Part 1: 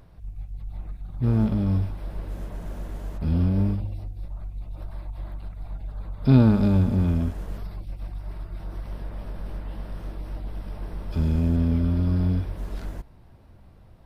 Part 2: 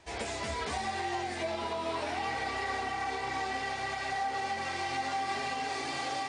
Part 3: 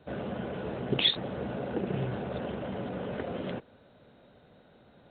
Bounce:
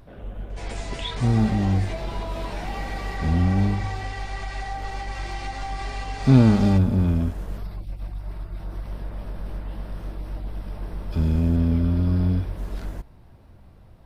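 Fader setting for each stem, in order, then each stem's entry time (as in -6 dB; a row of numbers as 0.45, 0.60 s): +1.5, -1.0, -8.5 dB; 0.00, 0.50, 0.00 s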